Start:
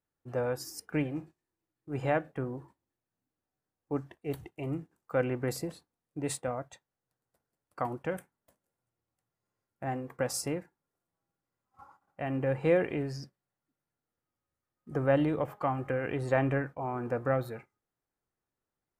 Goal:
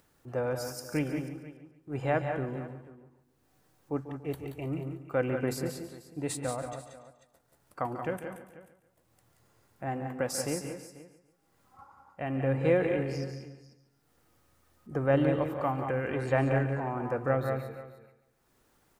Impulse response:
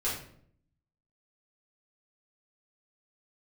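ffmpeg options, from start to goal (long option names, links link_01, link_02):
-filter_complex "[0:a]asplit=2[link_01][link_02];[link_02]aecho=0:1:178|193|490:0.398|0.251|0.119[link_03];[link_01][link_03]amix=inputs=2:normalize=0,acompressor=mode=upward:threshold=-50dB:ratio=2.5,asplit=2[link_04][link_05];[link_05]aecho=0:1:142|284|426|568:0.237|0.102|0.0438|0.0189[link_06];[link_04][link_06]amix=inputs=2:normalize=0"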